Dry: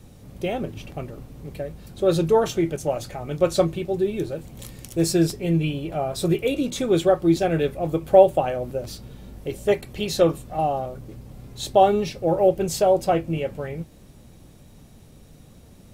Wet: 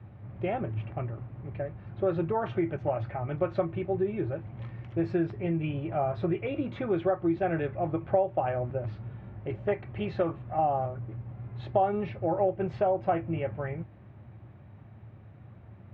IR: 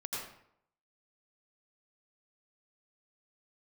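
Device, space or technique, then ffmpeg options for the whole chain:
bass amplifier: -af "acompressor=threshold=-20dB:ratio=4,highpass=f=77:w=0.5412,highpass=f=77:w=1.3066,equalizer=f=110:t=q:w=4:g=9,equalizer=f=160:t=q:w=4:g=-7,equalizer=f=260:t=q:w=4:g=-9,equalizer=f=470:t=q:w=4:g=-10,lowpass=f=2.1k:w=0.5412,lowpass=f=2.1k:w=1.3066"

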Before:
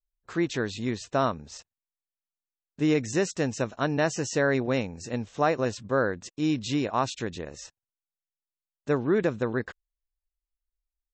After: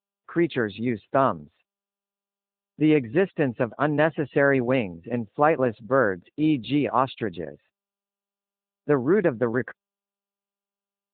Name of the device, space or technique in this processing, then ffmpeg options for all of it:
mobile call with aggressive noise cancelling: -filter_complex "[0:a]asplit=3[a][b][c];[a]afade=t=out:st=7.55:d=0.02[d];[b]highshelf=f=3.8k:g=-3,afade=t=in:st=7.55:d=0.02,afade=t=out:st=8.93:d=0.02[e];[c]afade=t=in:st=8.93:d=0.02[f];[d][e][f]amix=inputs=3:normalize=0,highpass=f=130:p=1,afftdn=nr=18:nf=-43,volume=5dB" -ar 8000 -c:a libopencore_amrnb -b:a 10200

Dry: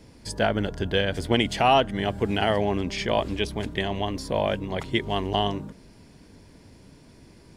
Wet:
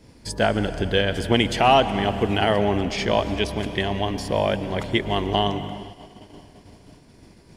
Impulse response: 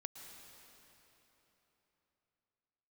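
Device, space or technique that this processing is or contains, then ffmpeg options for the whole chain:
keyed gated reverb: -filter_complex "[0:a]asplit=3[a][b][c];[1:a]atrim=start_sample=2205[d];[b][d]afir=irnorm=-1:irlink=0[e];[c]apad=whole_len=333701[f];[e][f]sidechaingate=range=-33dB:threshold=-49dB:ratio=16:detection=peak,volume=3.5dB[g];[a][g]amix=inputs=2:normalize=0,volume=-2.5dB"

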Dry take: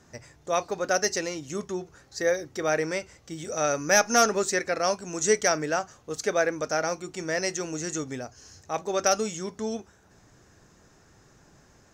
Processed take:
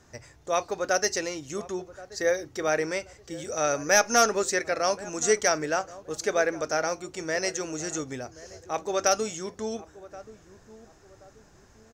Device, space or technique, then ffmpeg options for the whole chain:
low shelf boost with a cut just above: -filter_complex "[0:a]lowshelf=f=110:g=4.5,equalizer=f=180:t=o:w=0.95:g=-6,asplit=2[a][b];[b]adelay=1078,lowpass=f=840:p=1,volume=-16.5dB,asplit=2[c][d];[d]adelay=1078,lowpass=f=840:p=1,volume=0.4,asplit=2[e][f];[f]adelay=1078,lowpass=f=840:p=1,volume=0.4[g];[a][c][e][g]amix=inputs=4:normalize=0"

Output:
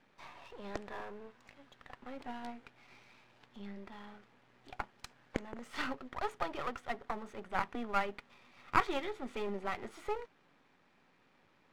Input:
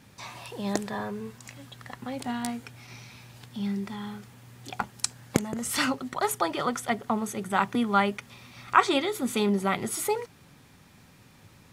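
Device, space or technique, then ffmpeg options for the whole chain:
crystal radio: -af "highpass=300,lowpass=2.6k,aeval=exprs='if(lt(val(0),0),0.251*val(0),val(0))':c=same,volume=-5.5dB"

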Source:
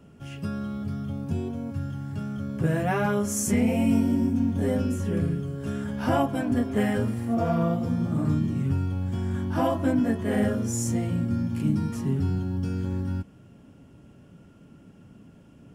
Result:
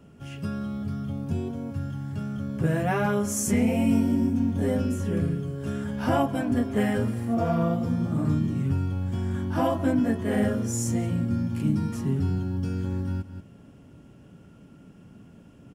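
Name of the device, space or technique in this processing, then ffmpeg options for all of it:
ducked delay: -filter_complex "[0:a]asplit=3[a][b][c];[b]adelay=182,volume=-6dB[d];[c]apad=whole_len=702275[e];[d][e]sidechaincompress=threshold=-41dB:ratio=8:attack=16:release=207[f];[a][f]amix=inputs=2:normalize=0"

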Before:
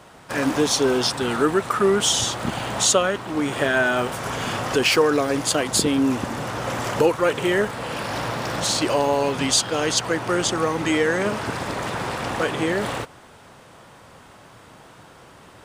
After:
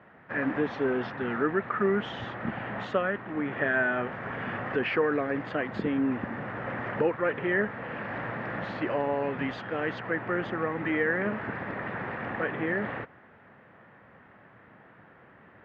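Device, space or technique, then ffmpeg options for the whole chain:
bass cabinet: -af "highpass=78,equalizer=f=210:t=q:w=4:g=5,equalizer=f=970:t=q:w=4:g=-3,equalizer=f=1.8k:t=q:w=4:g=8,lowpass=f=2.3k:w=0.5412,lowpass=f=2.3k:w=1.3066,volume=-8dB"

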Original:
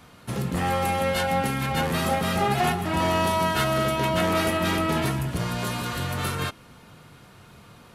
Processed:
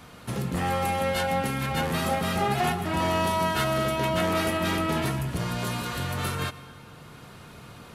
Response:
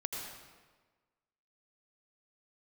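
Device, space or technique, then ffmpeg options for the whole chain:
ducked reverb: -filter_complex "[0:a]asplit=3[a][b][c];[1:a]atrim=start_sample=2205[d];[b][d]afir=irnorm=-1:irlink=0[e];[c]apad=whole_len=350258[f];[e][f]sidechaincompress=threshold=-40dB:ratio=12:attack=32:release=662,volume=1dB[g];[a][g]amix=inputs=2:normalize=0,volume=-3dB"

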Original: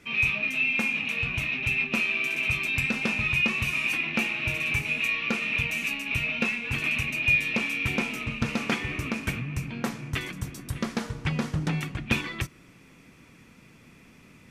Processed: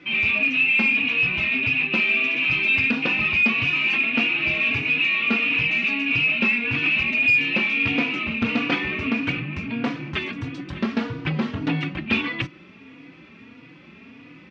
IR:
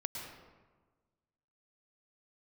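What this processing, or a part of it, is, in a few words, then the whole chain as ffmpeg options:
barber-pole flanger into a guitar amplifier: -filter_complex "[0:a]asplit=2[a][b];[b]adelay=3.5,afreqshift=1.6[c];[a][c]amix=inputs=2:normalize=1,asoftclip=type=tanh:threshold=-25dB,highpass=110,equalizer=f=140:t=q:w=4:g=-4,equalizer=f=280:t=q:w=4:g=7,equalizer=f=2.7k:t=q:w=4:g=4,lowpass=f=4.1k:w=0.5412,lowpass=f=4.1k:w=1.3066,volume=9dB"

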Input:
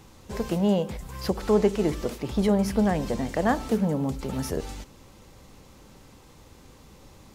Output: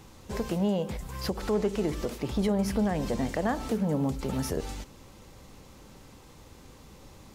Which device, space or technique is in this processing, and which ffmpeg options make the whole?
clipper into limiter: -af "asoftclip=type=hard:threshold=-12dB,alimiter=limit=-18.5dB:level=0:latency=1:release=134"

